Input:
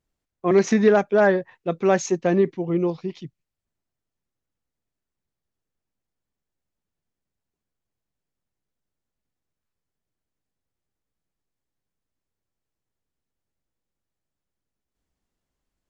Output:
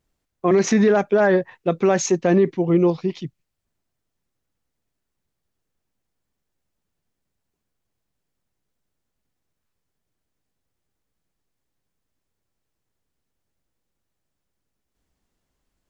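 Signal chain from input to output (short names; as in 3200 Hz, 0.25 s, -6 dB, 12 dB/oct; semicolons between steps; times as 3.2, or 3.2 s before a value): limiter -14.5 dBFS, peak gain reduction 9 dB; gain +6 dB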